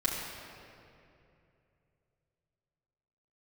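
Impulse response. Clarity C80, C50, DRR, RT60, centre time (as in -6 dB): 1.5 dB, 0.0 dB, -6.0 dB, 2.7 s, 119 ms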